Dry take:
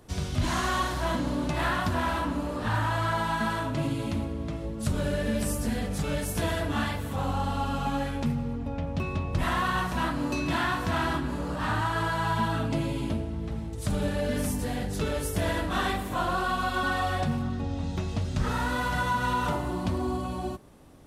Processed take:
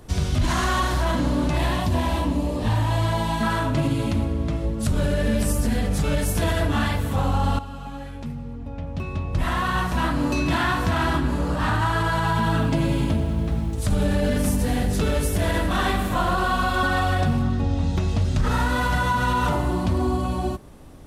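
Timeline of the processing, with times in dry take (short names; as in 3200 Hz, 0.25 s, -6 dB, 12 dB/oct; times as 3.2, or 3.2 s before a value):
1.57–3.43 bell 1400 Hz -15 dB 0.61 oct
7.59–10.25 fade in quadratic, from -14 dB
12.08–17.33 lo-fi delay 97 ms, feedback 80%, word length 9-bit, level -14 dB
whole clip: low shelf 67 Hz +9.5 dB; limiter -19 dBFS; gain +6 dB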